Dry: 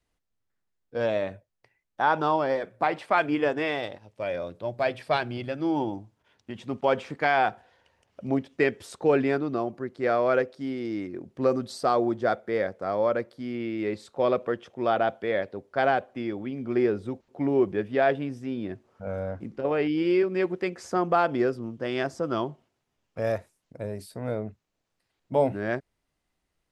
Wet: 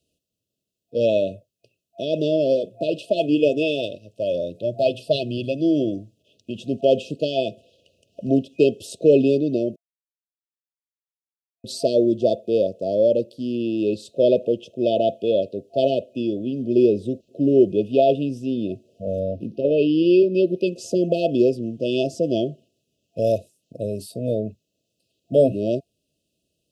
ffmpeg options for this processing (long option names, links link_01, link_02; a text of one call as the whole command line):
ffmpeg -i in.wav -filter_complex "[0:a]asettb=1/sr,asplit=3[link_01][link_02][link_03];[link_01]atrim=end=19.194[link_04];[link_02]atrim=start=19.19:end=20.68,asetpts=PTS-STARTPTS,afade=type=in:duration=0.004:curve=qsin,afade=type=out:start_time=1.486:duration=0.004:curve=qsin,equalizer=frequency=7400:width=3.6:gain=-14.5[link_05];[link_03]atrim=start=20.676[link_06];[link_04][link_05]acrossfade=duration=0.004:curve1=hsin:curve2=qsin[link_07];[link_07][link_06]acrossfade=duration=0.004:curve1=qsin:curve2=hsin,asplit=3[link_08][link_09][link_10];[link_08]atrim=end=9.76,asetpts=PTS-STARTPTS,afade=type=out:start_time=9.756:duration=0.004:curve=hsin[link_11];[link_09]atrim=start=9.76:end=11.64,asetpts=PTS-STARTPTS,volume=0[link_12];[link_10]atrim=start=11.64,asetpts=PTS-STARTPTS,afade=type=in:duration=0.004:curve=hsin[link_13];[link_11][link_12][link_13]concat=n=3:v=0:a=1,highpass=100,afftfilt=real='re*(1-between(b*sr/4096,680,2500))':imag='im*(1-between(b*sr/4096,680,2500))':win_size=4096:overlap=0.75,volume=7.5dB" out.wav